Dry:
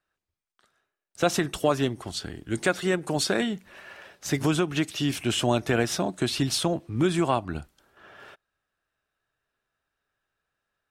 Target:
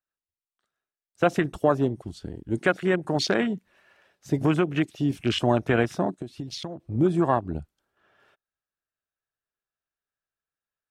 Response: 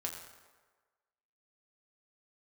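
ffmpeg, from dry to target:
-filter_complex "[0:a]afwtdn=0.0282,asplit=3[s0][s1][s2];[s0]afade=t=out:st=6.14:d=0.02[s3];[s1]acompressor=threshold=0.0224:ratio=16,afade=t=in:st=6.14:d=0.02,afade=t=out:st=6.79:d=0.02[s4];[s2]afade=t=in:st=6.79:d=0.02[s5];[s3][s4][s5]amix=inputs=3:normalize=0,volume=1.26"

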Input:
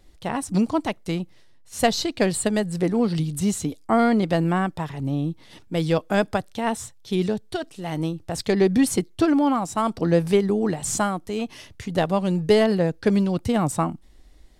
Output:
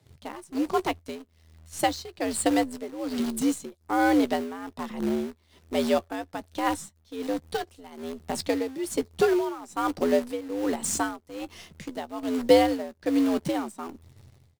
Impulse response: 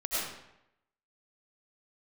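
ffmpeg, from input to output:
-filter_complex "[0:a]afreqshift=80,asplit=2[s0][s1];[s1]acrusher=bits=5:dc=4:mix=0:aa=0.000001,volume=0.631[s2];[s0][s2]amix=inputs=2:normalize=0,tremolo=f=1.2:d=0.83,asplit=2[s3][s4];[s4]adelay=14,volume=0.211[s5];[s3][s5]amix=inputs=2:normalize=0,volume=0.531"

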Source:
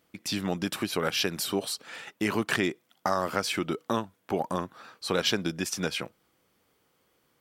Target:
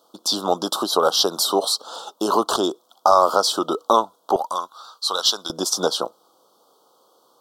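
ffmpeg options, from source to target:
-af "asetnsamples=n=441:p=0,asendcmd='4.36 highpass f 1500;5.5 highpass f 550',highpass=620,asoftclip=type=tanh:threshold=0.2,asuperstop=centerf=2100:order=8:qfactor=0.94,highshelf=f=5100:g=-10.5,alimiter=level_in=8.41:limit=0.891:release=50:level=0:latency=1,volume=0.891"

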